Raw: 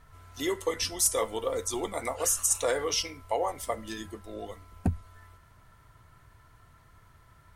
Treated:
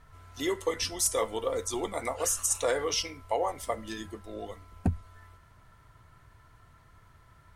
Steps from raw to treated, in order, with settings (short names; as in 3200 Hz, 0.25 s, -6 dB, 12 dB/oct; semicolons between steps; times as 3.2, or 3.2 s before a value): high shelf 9600 Hz -6 dB